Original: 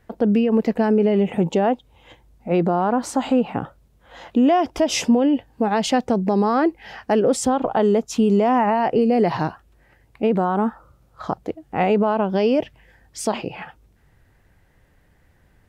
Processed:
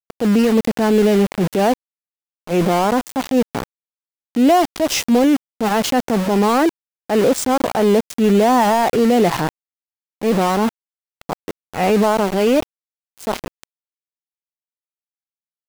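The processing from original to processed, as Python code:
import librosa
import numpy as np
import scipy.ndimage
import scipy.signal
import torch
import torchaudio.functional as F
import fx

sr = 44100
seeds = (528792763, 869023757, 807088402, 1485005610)

y = np.where(np.abs(x) >= 10.0 ** (-23.5 / 20.0), x, 0.0)
y = fx.transient(y, sr, attack_db=-6, sustain_db=2)
y = y * 10.0 ** (4.0 / 20.0)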